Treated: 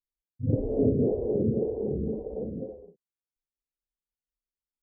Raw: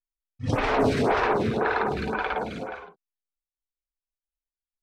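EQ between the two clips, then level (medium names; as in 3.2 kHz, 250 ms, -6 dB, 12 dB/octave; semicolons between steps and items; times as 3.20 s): high-pass 53 Hz 6 dB/octave; elliptic low-pass 530 Hz, stop band 60 dB; tilt EQ -1.5 dB/octave; -2.0 dB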